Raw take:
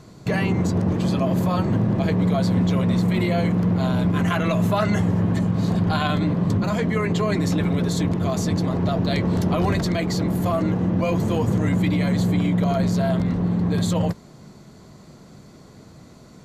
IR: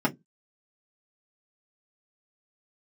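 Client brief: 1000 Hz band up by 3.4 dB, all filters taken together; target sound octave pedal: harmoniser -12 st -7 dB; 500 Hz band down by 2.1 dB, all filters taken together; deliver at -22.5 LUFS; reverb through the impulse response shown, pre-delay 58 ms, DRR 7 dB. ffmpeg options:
-filter_complex "[0:a]equalizer=f=500:t=o:g=-5,equalizer=f=1k:t=o:g=6,asplit=2[a][b];[1:a]atrim=start_sample=2205,adelay=58[c];[b][c]afir=irnorm=-1:irlink=0,volume=-19dB[d];[a][d]amix=inputs=2:normalize=0,asplit=2[e][f];[f]asetrate=22050,aresample=44100,atempo=2,volume=-7dB[g];[e][g]amix=inputs=2:normalize=0,volume=-5dB"

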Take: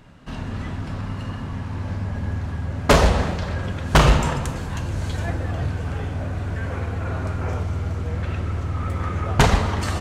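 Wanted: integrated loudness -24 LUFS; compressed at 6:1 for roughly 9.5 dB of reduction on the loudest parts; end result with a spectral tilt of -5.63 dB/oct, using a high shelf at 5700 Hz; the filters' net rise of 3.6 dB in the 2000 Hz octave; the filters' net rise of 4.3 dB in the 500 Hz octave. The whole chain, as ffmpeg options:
-af "equalizer=f=500:t=o:g=5,equalizer=f=2k:t=o:g=3.5,highshelf=f=5.7k:g=7.5,acompressor=threshold=-19dB:ratio=6,volume=2.5dB"

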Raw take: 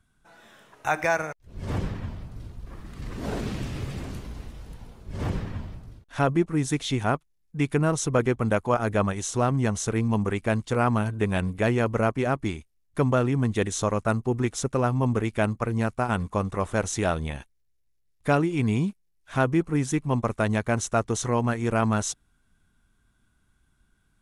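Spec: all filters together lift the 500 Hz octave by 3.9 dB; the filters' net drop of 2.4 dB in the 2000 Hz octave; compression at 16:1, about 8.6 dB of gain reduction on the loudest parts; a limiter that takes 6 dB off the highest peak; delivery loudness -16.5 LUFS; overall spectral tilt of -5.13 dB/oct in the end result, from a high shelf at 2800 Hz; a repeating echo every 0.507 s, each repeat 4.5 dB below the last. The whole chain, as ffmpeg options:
-af "equalizer=f=500:t=o:g=5,equalizer=f=2k:t=o:g=-6.5,highshelf=f=2.8k:g=6.5,acompressor=threshold=-23dB:ratio=16,alimiter=limit=-19dB:level=0:latency=1,aecho=1:1:507|1014|1521|2028|2535|3042|3549|4056|4563:0.596|0.357|0.214|0.129|0.0772|0.0463|0.0278|0.0167|0.01,volume=13dB"

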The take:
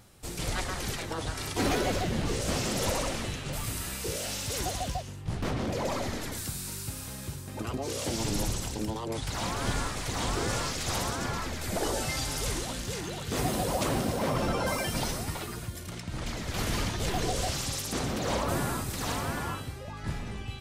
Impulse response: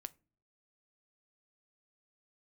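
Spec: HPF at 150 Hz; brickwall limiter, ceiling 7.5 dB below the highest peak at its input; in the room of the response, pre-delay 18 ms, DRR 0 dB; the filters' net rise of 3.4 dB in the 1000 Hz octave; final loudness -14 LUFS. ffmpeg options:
-filter_complex "[0:a]highpass=150,equalizer=f=1k:t=o:g=4.5,alimiter=limit=-23dB:level=0:latency=1,asplit=2[a][b];[1:a]atrim=start_sample=2205,adelay=18[c];[b][c]afir=irnorm=-1:irlink=0,volume=4.5dB[d];[a][d]amix=inputs=2:normalize=0,volume=16.5dB"

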